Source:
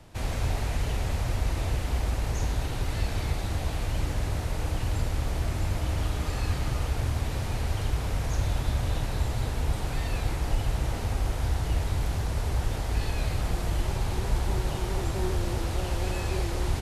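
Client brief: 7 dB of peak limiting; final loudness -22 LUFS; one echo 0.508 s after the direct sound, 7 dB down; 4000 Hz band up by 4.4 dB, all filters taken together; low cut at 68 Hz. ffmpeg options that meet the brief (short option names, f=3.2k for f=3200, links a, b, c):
-af "highpass=68,equalizer=f=4k:t=o:g=5.5,alimiter=level_in=0.5dB:limit=-24dB:level=0:latency=1,volume=-0.5dB,aecho=1:1:508:0.447,volume=11.5dB"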